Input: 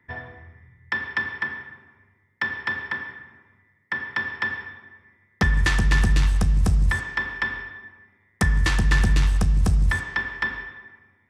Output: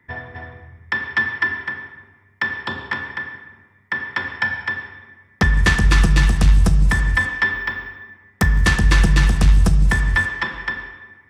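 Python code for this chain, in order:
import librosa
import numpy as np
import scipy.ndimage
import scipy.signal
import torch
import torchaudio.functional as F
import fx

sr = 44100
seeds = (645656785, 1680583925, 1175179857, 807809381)

y = x + 10.0 ** (-3.5 / 20.0) * np.pad(x, (int(256 * sr / 1000.0), 0))[:len(x)]
y = fx.resample_linear(y, sr, factor=2, at=(7.53, 8.65))
y = F.gain(torch.from_numpy(y), 4.0).numpy()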